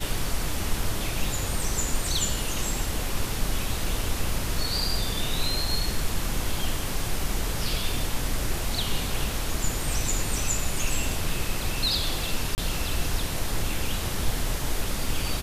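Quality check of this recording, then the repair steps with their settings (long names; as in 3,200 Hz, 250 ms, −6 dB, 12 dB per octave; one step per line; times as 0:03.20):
0:12.55–0:12.58: drop-out 29 ms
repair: repair the gap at 0:12.55, 29 ms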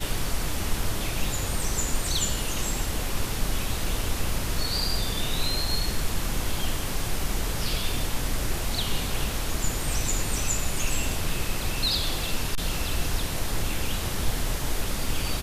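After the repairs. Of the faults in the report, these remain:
none of them is left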